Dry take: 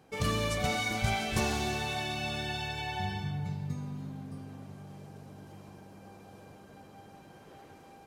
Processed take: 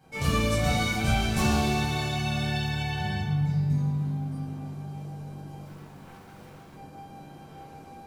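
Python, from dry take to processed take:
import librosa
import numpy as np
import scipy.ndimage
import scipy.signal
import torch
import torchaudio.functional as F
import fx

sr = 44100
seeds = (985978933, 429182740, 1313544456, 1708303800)

y = fx.self_delay(x, sr, depth_ms=0.82, at=(5.65, 6.73))
y = fx.high_shelf(y, sr, hz=6900.0, db=4.5)
y = fx.room_shoebox(y, sr, seeds[0], volume_m3=960.0, walls='furnished', distance_m=7.8)
y = y * 10.0 ** (-6.0 / 20.0)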